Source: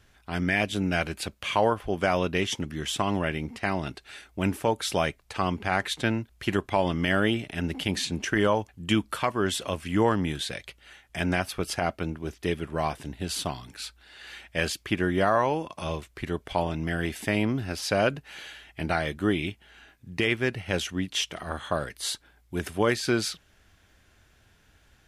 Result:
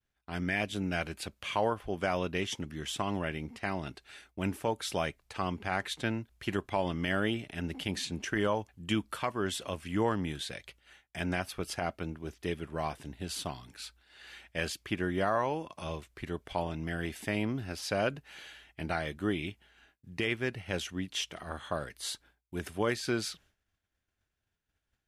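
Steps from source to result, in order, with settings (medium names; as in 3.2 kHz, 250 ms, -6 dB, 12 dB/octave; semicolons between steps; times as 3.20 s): expander -48 dBFS; trim -6.5 dB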